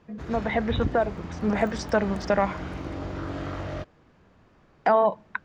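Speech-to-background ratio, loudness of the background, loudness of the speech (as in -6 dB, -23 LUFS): 9.5 dB, -35.5 LUFS, -26.0 LUFS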